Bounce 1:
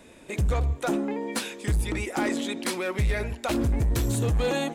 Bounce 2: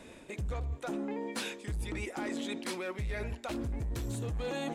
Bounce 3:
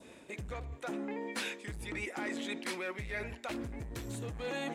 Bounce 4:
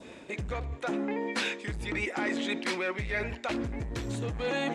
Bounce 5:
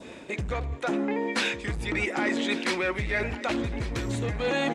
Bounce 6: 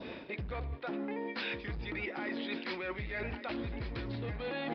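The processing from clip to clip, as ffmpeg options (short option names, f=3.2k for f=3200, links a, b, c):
-af "highshelf=f=11k:g=-7.5,areverse,acompressor=threshold=-34dB:ratio=6,areverse"
-af "highpass=f=120:p=1,adynamicequalizer=threshold=0.002:dfrequency=2000:dqfactor=1.5:tfrequency=2000:tqfactor=1.5:attack=5:release=100:ratio=0.375:range=3:mode=boostabove:tftype=bell,volume=-2dB"
-af "lowpass=6.5k,volume=7dB"
-af "aecho=1:1:1150|2300:0.188|0.0414,volume=4dB"
-af "areverse,acompressor=threshold=-36dB:ratio=5,areverse,aresample=11025,aresample=44100"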